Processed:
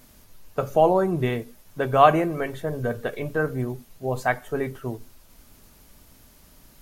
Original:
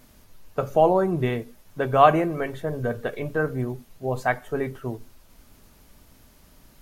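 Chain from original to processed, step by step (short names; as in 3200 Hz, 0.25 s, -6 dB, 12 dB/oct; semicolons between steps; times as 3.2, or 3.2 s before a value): high shelf 4700 Hz +4.5 dB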